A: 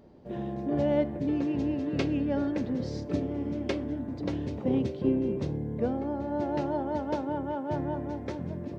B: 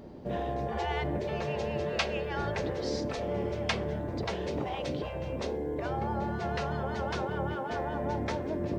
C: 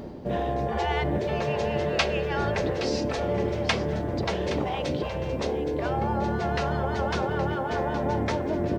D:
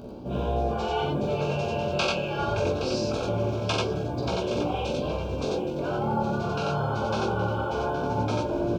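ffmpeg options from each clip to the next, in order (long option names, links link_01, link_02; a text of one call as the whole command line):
ffmpeg -i in.wav -af "afftfilt=real='re*lt(hypot(re,im),0.1)':imag='im*lt(hypot(re,im),0.1)':win_size=1024:overlap=0.75,volume=8dB" out.wav
ffmpeg -i in.wav -af "aecho=1:1:819:0.251,areverse,acompressor=mode=upward:threshold=-35dB:ratio=2.5,areverse,volume=5.5dB" out.wav
ffmpeg -i in.wav -filter_complex "[0:a]flanger=delay=16:depth=5.8:speed=0.25,asuperstop=centerf=1900:order=8:qfactor=2.9,asplit=2[link_01][link_02];[link_02]aecho=0:1:43.73|90.38:0.562|0.891[link_03];[link_01][link_03]amix=inputs=2:normalize=0" out.wav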